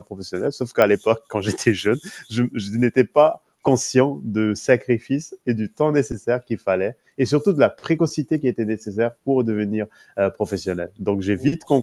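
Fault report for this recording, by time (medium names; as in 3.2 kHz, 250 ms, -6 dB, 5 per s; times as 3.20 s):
0.82 s: pop -6 dBFS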